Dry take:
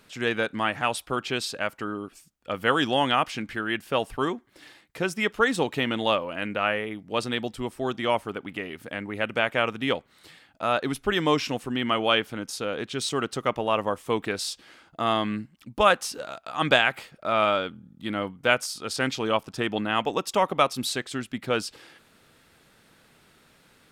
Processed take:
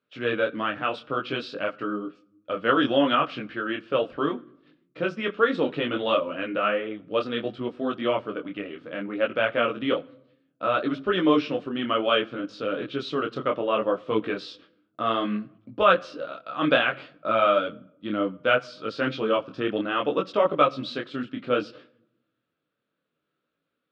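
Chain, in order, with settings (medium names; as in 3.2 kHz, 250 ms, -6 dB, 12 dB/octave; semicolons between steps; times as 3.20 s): gate -46 dBFS, range -22 dB; cabinet simulation 100–3700 Hz, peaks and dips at 100 Hz -6 dB, 300 Hz +6 dB, 540 Hz +7 dB, 840 Hz -9 dB, 1.3 kHz +5 dB, 2 kHz -6 dB; reverberation RT60 0.85 s, pre-delay 7 ms, DRR 18 dB; detune thickener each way 22 cents; trim +2.5 dB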